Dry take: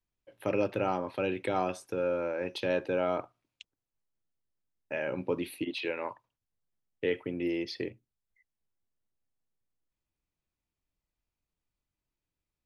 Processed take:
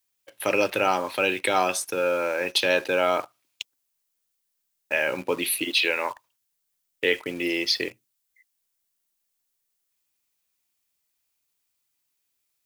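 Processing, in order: tilt +4 dB/oct; in parallel at -3.5 dB: requantised 8-bit, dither none; on the sum: gain +5 dB

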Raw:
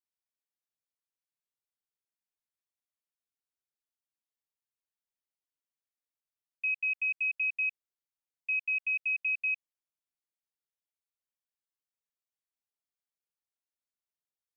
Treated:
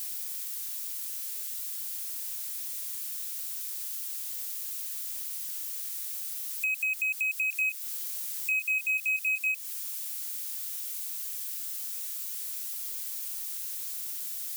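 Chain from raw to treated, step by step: switching spikes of -35.5 dBFS; 7.5–9.52 doubler 26 ms -6 dB; compressor 3:1, threshold -36 dBFS, peak gain reduction 8.5 dB; gain +7 dB

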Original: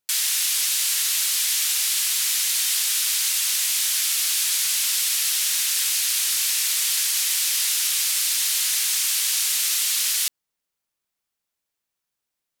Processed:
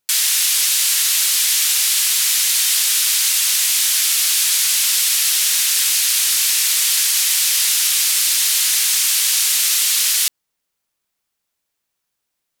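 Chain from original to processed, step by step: 7.33–8.35 HPF 310 Hz 24 dB/oct; gain +6 dB

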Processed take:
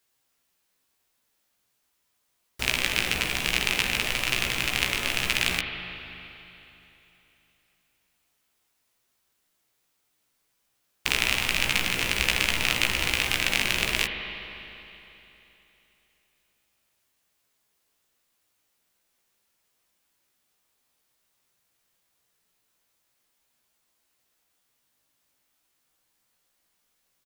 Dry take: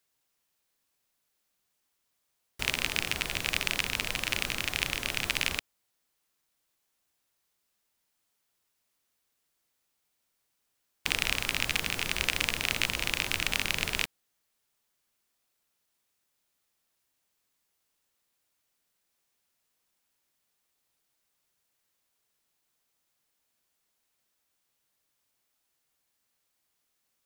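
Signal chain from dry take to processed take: doubler 16 ms -4.5 dB; spring tank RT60 3.2 s, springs 39/51 ms, chirp 35 ms, DRR 5 dB; gain +3 dB

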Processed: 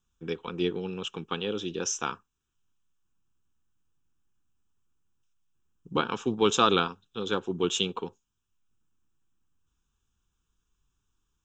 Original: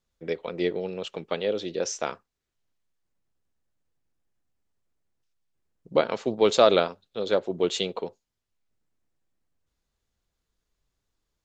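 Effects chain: fixed phaser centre 3000 Hz, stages 8; gain +3.5 dB

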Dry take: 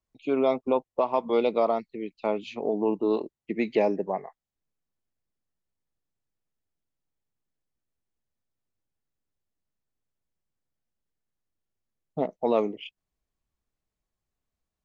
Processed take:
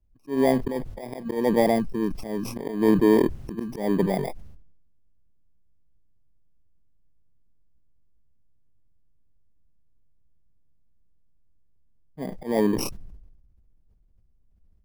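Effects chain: FFT order left unsorted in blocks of 32 samples; tilt -4.5 dB/oct; auto swell 0.215 s; sustainer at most 46 dB/s; gain +1.5 dB

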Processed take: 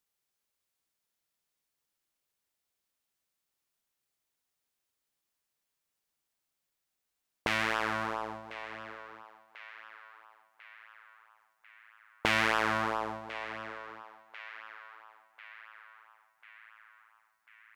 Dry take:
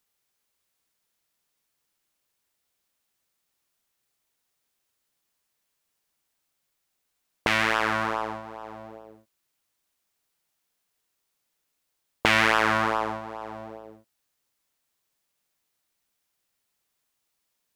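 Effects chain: narrowing echo 1.044 s, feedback 63%, band-pass 1800 Hz, level -13 dB; gain -7 dB

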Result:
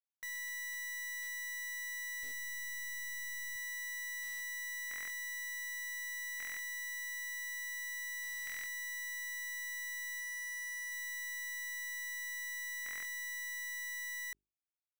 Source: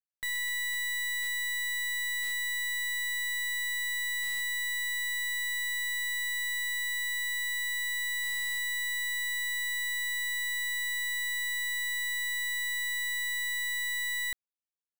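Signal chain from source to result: tracing distortion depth 0.1 ms; 10.2–10.92 HPF 180 Hz 24 dB/oct; limiter -40 dBFS, peak gain reduction 11 dB; bit-crush 8-bit; 2.23–3.56 resonant low shelf 680 Hz +10.5 dB, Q 1.5; notches 50/100/150/200/250/300/350/400 Hz; stuck buffer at 4.89/6.38/8.45/12.84, samples 1024, times 8

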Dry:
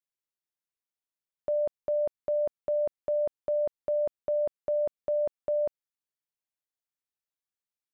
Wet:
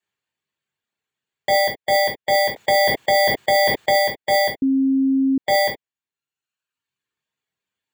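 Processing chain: FFT order left unsorted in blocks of 32 samples; reverb removal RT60 1.1 s; reverb, pre-delay 3 ms, DRR -3.5 dB; 2.56–3.98 fast leveller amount 70%; 4.62–5.38 bleep 268 Hz -15.5 dBFS; gain +1 dB

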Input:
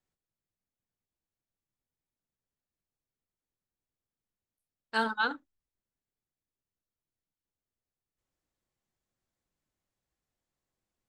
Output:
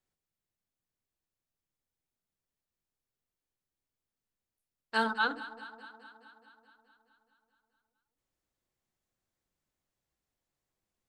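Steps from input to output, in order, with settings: notches 50/100/150/200/250/300 Hz; on a send: echo with dull and thin repeats by turns 0.106 s, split 810 Hz, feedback 82%, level -14 dB

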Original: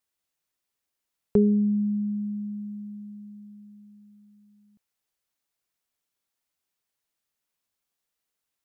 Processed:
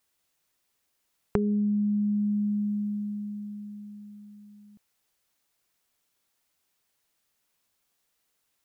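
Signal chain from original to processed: compressor 8:1, threshold -32 dBFS, peak gain reduction 16.5 dB; gain +8 dB

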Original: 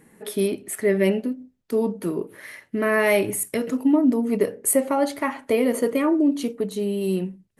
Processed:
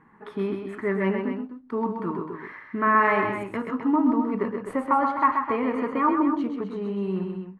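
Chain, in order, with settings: resonant low shelf 790 Hz -10 dB, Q 3; modulation noise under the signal 23 dB; LPF 1000 Hz 12 dB/oct; tapped delay 0.111/0.13/0.257 s -17/-6/-9.5 dB; gain +7 dB

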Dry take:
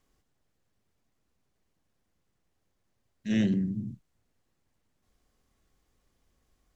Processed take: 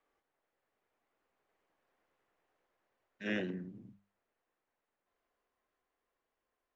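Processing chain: Doppler pass-by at 2.08, 19 m/s, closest 20 m; three-band isolator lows -21 dB, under 370 Hz, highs -18 dB, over 2700 Hz; notches 50/100/150/200 Hz; gain +6.5 dB

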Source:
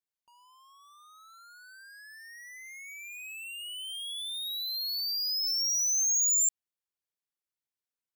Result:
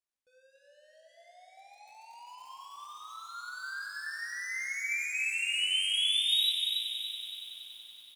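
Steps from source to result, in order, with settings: chorus voices 4, 0.76 Hz, delay 17 ms, depth 1.4 ms; pitch shift -11 st; multi-head echo 94 ms, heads first and third, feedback 74%, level -10 dB; lo-fi delay 0.3 s, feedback 35%, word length 9-bit, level -7 dB

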